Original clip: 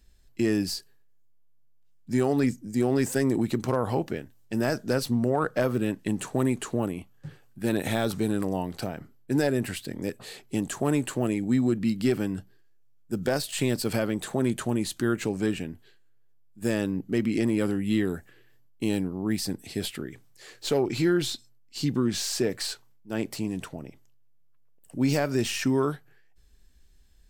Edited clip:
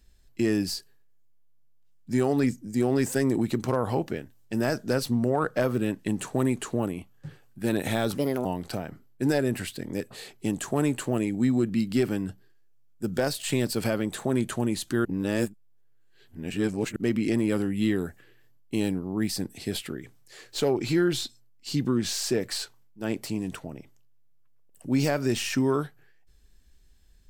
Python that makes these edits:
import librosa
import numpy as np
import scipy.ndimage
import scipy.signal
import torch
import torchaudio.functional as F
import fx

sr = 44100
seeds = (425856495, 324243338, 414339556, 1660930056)

y = fx.edit(x, sr, fx.speed_span(start_s=8.15, length_s=0.39, speed=1.3),
    fx.reverse_span(start_s=15.14, length_s=1.91), tone=tone)